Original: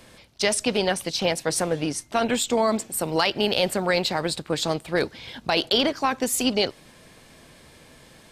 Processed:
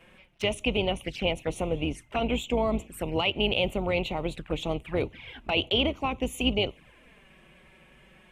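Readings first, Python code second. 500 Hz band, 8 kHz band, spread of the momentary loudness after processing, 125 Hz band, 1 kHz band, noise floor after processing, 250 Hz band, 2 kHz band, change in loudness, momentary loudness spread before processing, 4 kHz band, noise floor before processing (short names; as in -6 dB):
-4.5 dB, -17.5 dB, 7 LU, 0.0 dB, -6.5 dB, -57 dBFS, -3.5 dB, -4.0 dB, -4.5 dB, 5 LU, -4.0 dB, -52 dBFS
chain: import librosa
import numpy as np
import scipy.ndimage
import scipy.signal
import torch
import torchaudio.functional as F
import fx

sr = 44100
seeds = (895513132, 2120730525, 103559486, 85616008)

y = fx.octave_divider(x, sr, octaves=2, level_db=-3.0)
y = fx.env_flanger(y, sr, rest_ms=6.5, full_db=-22.0)
y = fx.high_shelf_res(y, sr, hz=3500.0, db=-9.0, q=3.0)
y = F.gain(torch.from_numpy(y), -3.5).numpy()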